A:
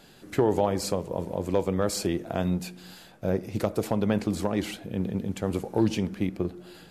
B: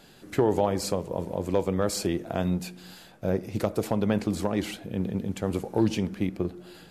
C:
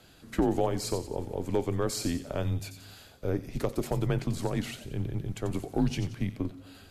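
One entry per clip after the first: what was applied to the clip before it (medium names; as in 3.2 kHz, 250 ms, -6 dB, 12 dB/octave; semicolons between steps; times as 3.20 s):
no audible change
feedback echo behind a high-pass 90 ms, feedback 41%, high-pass 3.6 kHz, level -7 dB; frequency shift -80 Hz; trim -3 dB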